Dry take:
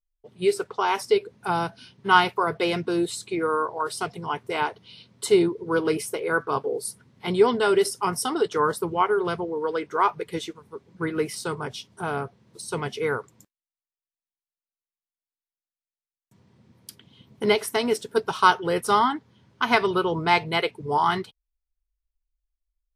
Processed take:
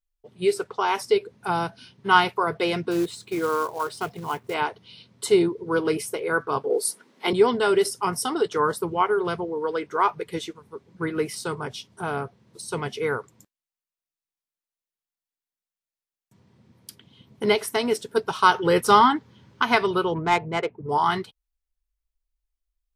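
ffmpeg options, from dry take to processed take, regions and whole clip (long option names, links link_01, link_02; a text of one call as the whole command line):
ffmpeg -i in.wav -filter_complex "[0:a]asettb=1/sr,asplit=3[link_01][link_02][link_03];[link_01]atrim=end=2.914[link_04];[link_02]atrim=start=2.91:end=4.54,asetpts=PTS-STARTPTS,afade=type=in:duration=0.004:curve=qsin,afade=type=out:start_time=1.626:duration=0.004:curve=qsin,lowpass=frequency=3200:poles=1,acrusher=bits=4:mode=log:mix=0:aa=0.000001[link_05];[link_03]atrim=start=4.536[link_06];[link_04][link_05]acrossfade=duration=0.004:curve1=hsin:curve2=qsin[link_07];[link_07][link_06]acrossfade=duration=0.004:curve1=qsin:curve2=hsin,asettb=1/sr,asplit=3[link_08][link_09][link_10];[link_08]atrim=end=6.704[link_11];[link_09]atrim=start=6.7:end=7.33,asetpts=PTS-STARTPTS,afade=type=in:duration=0.004:curve=qsin,afade=type=out:start_time=0.626:duration=0.004:curve=qsin,highpass=frequency=270:width=0.5412,highpass=frequency=270:width=1.3066,acontrast=59[link_12];[link_10]atrim=start=7.326[link_13];[link_11][link_12]acrossfade=duration=0.004:curve1=hsin:curve2=qsin[link_14];[link_14][link_13]acrossfade=duration=0.004:curve1=qsin:curve2=hsin,asettb=1/sr,asplit=3[link_15][link_16][link_17];[link_15]atrim=end=18.544[link_18];[link_16]atrim=start=18.54:end=19.63,asetpts=PTS-STARTPTS,afade=type=in:duration=0.004:curve=qsin,afade=type=out:start_time=1.086:duration=0.004:curve=qsin,equalizer=frequency=9600:width=6.6:gain=-7.5,bandreject=frequency=690:width=8.2,acontrast=32[link_19];[link_17]atrim=start=19.626[link_20];[link_18][link_19]acrossfade=duration=0.004:curve1=hsin:curve2=qsin[link_21];[link_21][link_20]acrossfade=duration=0.004:curve1=qsin:curve2=hsin,asettb=1/sr,asplit=3[link_22][link_23][link_24];[link_22]atrim=end=20.144[link_25];[link_23]atrim=start=20.14:end=20.89,asetpts=PTS-STARTPTS,afade=type=in:duration=0.004:curve=qsin,afade=type=out:start_time=0.746:duration=0.004:curve=qsin,lowpass=frequency=3600:poles=1,adynamicsmooth=sensitivity=1:basefreq=1100[link_26];[link_24]atrim=start=20.886[link_27];[link_25][link_26]acrossfade=duration=0.004:curve1=hsin:curve2=qsin[link_28];[link_28][link_27]acrossfade=duration=0.004:curve1=qsin:curve2=hsin" out.wav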